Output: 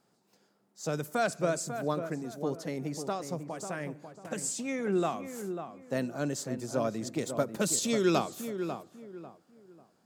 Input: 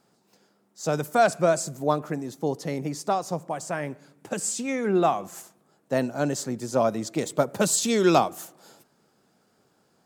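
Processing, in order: dynamic EQ 810 Hz, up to -7 dB, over -37 dBFS, Q 1.8; on a send: darkening echo 0.545 s, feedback 30%, low-pass 1600 Hz, level -8 dB; on the sum: gain -5.5 dB

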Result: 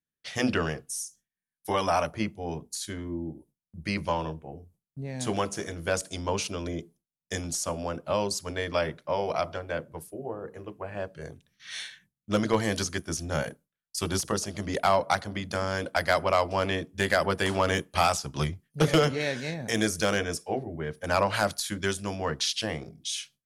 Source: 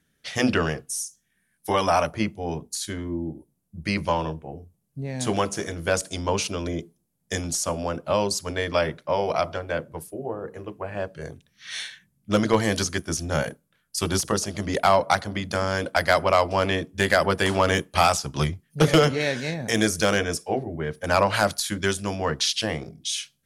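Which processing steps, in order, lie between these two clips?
gate with hold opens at -47 dBFS; gain -4.5 dB

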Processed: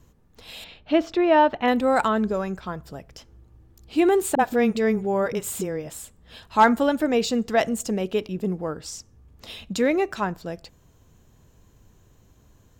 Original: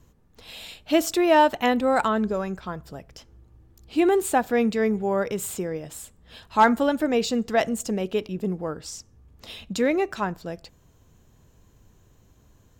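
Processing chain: 0.64–1.68 air absorption 250 m; 4.35–5.9 dispersion highs, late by 43 ms, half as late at 360 Hz; gain +1 dB

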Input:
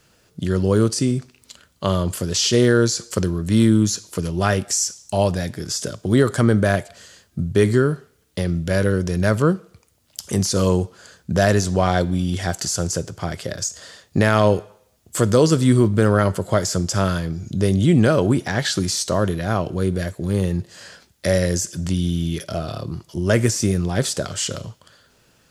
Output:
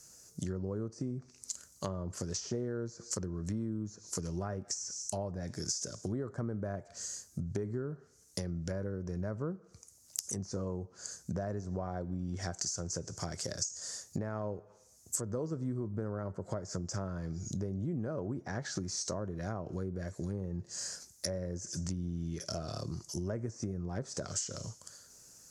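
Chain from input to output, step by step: treble ducked by the level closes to 1200 Hz, closed at -16 dBFS; resonant high shelf 4500 Hz +12 dB, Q 3; compressor 6:1, threshold -25 dBFS, peak gain reduction 15.5 dB; gain -8.5 dB

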